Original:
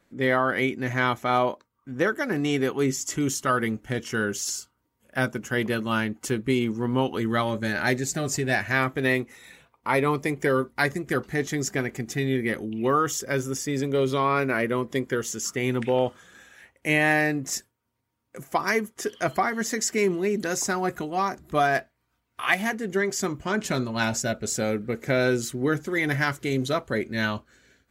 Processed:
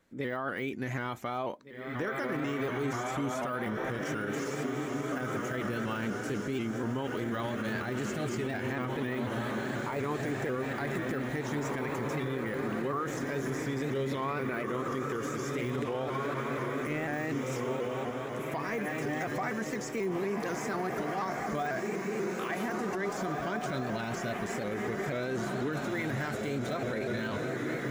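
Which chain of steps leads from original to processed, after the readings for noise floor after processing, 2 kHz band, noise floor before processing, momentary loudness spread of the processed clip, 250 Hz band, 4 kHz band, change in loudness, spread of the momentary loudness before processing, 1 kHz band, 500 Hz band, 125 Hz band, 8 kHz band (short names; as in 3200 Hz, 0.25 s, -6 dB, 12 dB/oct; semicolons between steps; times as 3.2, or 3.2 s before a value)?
-37 dBFS, -9.5 dB, -74 dBFS, 2 LU, -6.0 dB, -10.5 dB, -8.0 dB, 6 LU, -7.5 dB, -7.0 dB, -6.0 dB, -15.0 dB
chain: de-esser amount 90%; diffused feedback echo 1.975 s, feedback 46%, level -3.5 dB; limiter -20.5 dBFS, peak gain reduction 10 dB; shaped vibrato saw up 4.1 Hz, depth 100 cents; gain -4 dB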